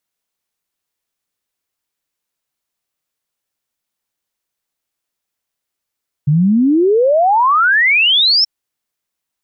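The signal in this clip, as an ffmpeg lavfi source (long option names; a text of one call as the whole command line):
ffmpeg -f lavfi -i "aevalsrc='0.376*clip(min(t,2.18-t)/0.01,0,1)*sin(2*PI*140*2.18/log(5500/140)*(exp(log(5500/140)*t/2.18)-1))':duration=2.18:sample_rate=44100" out.wav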